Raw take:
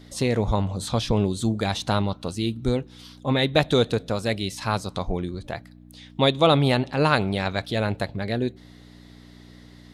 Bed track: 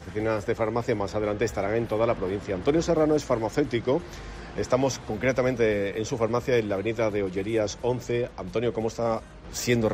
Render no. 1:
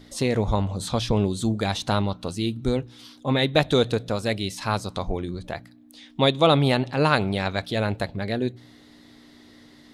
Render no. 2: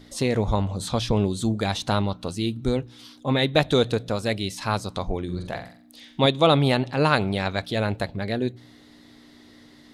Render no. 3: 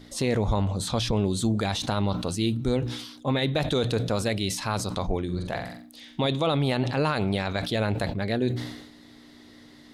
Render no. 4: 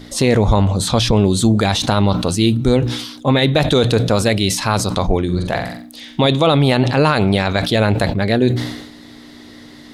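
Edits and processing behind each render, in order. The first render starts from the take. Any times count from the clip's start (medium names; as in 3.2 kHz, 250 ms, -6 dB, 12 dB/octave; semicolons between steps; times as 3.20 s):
de-hum 60 Hz, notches 3
5.25–6.26 s: flutter echo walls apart 7.7 m, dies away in 0.44 s
peak limiter -15.5 dBFS, peak gain reduction 11.5 dB; decay stretcher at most 61 dB/s
trim +11 dB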